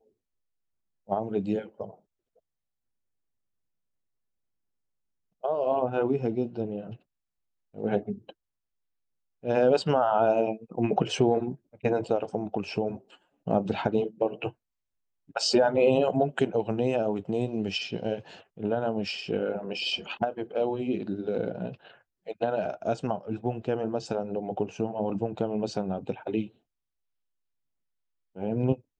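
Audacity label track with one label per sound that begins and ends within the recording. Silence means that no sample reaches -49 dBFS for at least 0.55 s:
1.080000	1.950000	sound
5.430000	6.960000	sound
7.740000	8.310000	sound
9.430000	14.520000	sound
15.290000	26.490000	sound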